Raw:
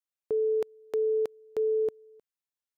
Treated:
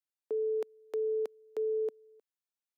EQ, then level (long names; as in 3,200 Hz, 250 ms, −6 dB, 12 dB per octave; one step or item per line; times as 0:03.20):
high-pass filter 250 Hz 24 dB per octave
−5.0 dB